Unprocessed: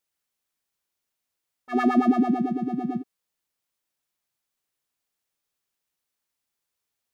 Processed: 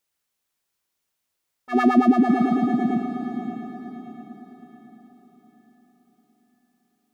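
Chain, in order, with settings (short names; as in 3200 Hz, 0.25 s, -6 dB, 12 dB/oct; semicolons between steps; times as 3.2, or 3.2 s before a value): diffused feedback echo 0.576 s, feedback 44%, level -8 dB; gain +3.5 dB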